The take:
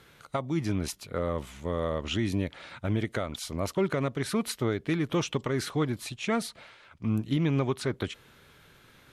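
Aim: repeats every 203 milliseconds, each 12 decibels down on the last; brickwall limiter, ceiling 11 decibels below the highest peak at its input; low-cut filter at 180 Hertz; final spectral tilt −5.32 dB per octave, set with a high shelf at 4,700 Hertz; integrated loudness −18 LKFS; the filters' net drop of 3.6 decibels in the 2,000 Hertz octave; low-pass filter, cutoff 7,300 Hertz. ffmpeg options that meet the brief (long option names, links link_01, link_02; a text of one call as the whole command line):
ffmpeg -i in.wav -af "highpass=180,lowpass=7300,equalizer=frequency=2000:width_type=o:gain=-3.5,highshelf=frequency=4700:gain=-5.5,alimiter=level_in=2.5dB:limit=-24dB:level=0:latency=1,volume=-2.5dB,aecho=1:1:203|406|609:0.251|0.0628|0.0157,volume=19.5dB" out.wav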